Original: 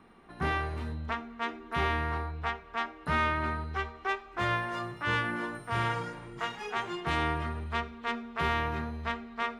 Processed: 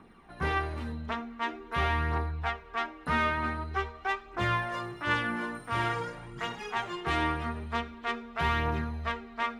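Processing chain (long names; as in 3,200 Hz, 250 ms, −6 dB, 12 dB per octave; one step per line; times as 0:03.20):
phase shifter 0.46 Hz, delay 4.8 ms, feedback 40%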